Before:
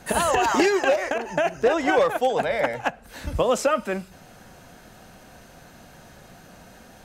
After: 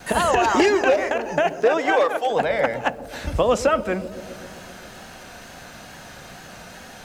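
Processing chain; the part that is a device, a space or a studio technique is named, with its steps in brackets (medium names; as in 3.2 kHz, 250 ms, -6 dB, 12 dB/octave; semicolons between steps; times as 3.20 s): noise-reduction cassette on a plain deck (tape noise reduction on one side only encoder only; wow and flutter; white noise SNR 35 dB); 1.49–2.29 s: high-pass 240 Hz -> 680 Hz 12 dB/octave; treble shelf 9 kHz -10.5 dB; feedback echo behind a low-pass 131 ms, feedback 73%, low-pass 520 Hz, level -11 dB; trim +2.5 dB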